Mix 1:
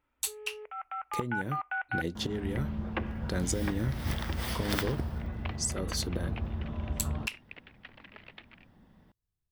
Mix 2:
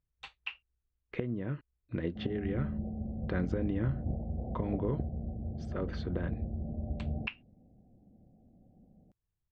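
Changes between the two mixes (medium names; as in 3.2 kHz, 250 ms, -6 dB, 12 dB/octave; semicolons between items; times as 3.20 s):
speech: add low-pass 2.7 kHz 24 dB/octave; first sound: muted; second sound: add rippled Chebyshev low-pass 770 Hz, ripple 3 dB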